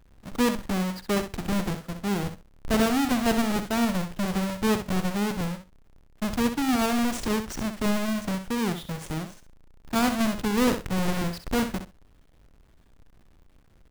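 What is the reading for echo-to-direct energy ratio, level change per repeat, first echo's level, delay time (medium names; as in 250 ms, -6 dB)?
-9.0 dB, -16.0 dB, -9.0 dB, 64 ms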